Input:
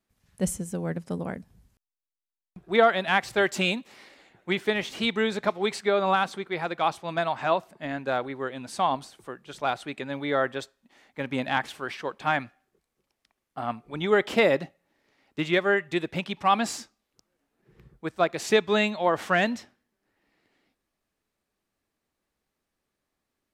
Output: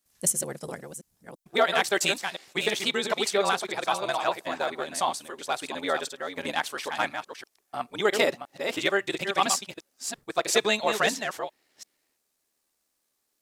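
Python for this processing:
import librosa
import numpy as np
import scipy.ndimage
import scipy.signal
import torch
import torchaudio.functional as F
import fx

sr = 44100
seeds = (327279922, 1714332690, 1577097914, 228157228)

y = fx.reverse_delay(x, sr, ms=593, wet_db=-7.0)
y = fx.stretch_grains(y, sr, factor=0.57, grain_ms=26.0)
y = fx.bass_treble(y, sr, bass_db=-10, treble_db=13)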